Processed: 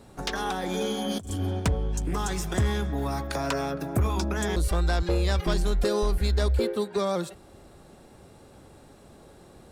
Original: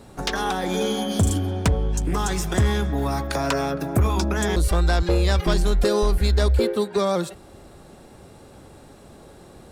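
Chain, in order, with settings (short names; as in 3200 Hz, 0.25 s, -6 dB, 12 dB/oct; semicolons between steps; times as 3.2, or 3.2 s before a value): 1.04–1.6 negative-ratio compressor -24 dBFS, ratio -0.5; gain -5 dB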